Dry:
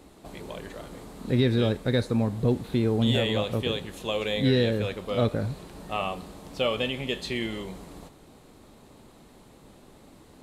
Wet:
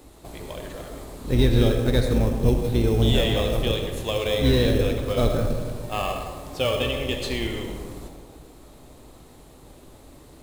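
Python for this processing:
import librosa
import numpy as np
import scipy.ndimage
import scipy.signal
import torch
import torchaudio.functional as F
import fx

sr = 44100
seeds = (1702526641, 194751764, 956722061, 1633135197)

p1 = fx.octave_divider(x, sr, octaves=2, level_db=-1.0)
p2 = fx.peak_eq(p1, sr, hz=200.0, db=-8.5, octaves=0.32)
p3 = fx.rev_freeverb(p2, sr, rt60_s=1.8, hf_ratio=0.35, predelay_ms=35, drr_db=4.0)
p4 = fx.sample_hold(p3, sr, seeds[0], rate_hz=2900.0, jitter_pct=0)
p5 = p3 + F.gain(torch.from_numpy(p4), -11.5).numpy()
y = fx.high_shelf(p5, sr, hz=6100.0, db=8.0)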